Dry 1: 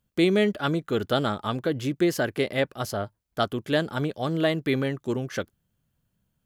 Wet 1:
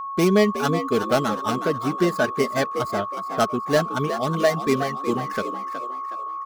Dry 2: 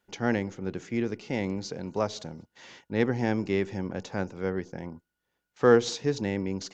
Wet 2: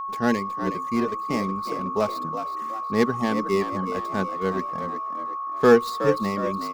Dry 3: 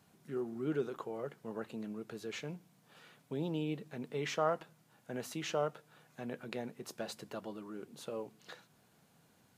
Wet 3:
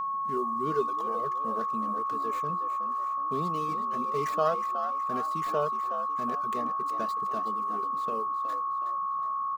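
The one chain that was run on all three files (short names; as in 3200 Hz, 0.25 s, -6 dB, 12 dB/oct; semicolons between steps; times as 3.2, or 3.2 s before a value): median filter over 15 samples; reverb removal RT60 1.2 s; high shelf 3300 Hz +7 dB; comb 4.7 ms, depth 46%; whine 1100 Hz -32 dBFS; on a send: frequency-shifting echo 0.368 s, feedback 43%, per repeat +64 Hz, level -10 dB; on the sum: gain +3.5 dB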